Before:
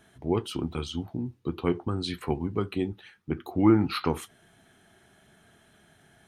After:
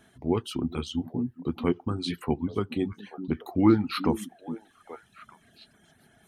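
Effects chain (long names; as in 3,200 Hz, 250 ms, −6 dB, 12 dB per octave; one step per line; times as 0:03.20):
parametric band 240 Hz +6 dB 0.27 octaves
on a send: echo through a band-pass that steps 416 ms, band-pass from 230 Hz, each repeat 1.4 octaves, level −7.5 dB
on the sum: reverb reduction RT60 0.75 s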